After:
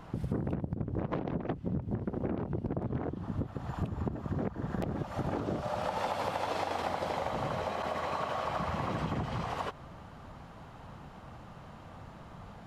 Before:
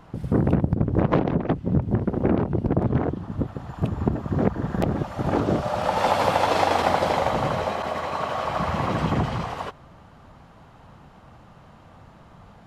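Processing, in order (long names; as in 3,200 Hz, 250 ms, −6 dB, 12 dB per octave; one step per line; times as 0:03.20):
downward compressor 6 to 1, threshold −31 dBFS, peak gain reduction 15.5 dB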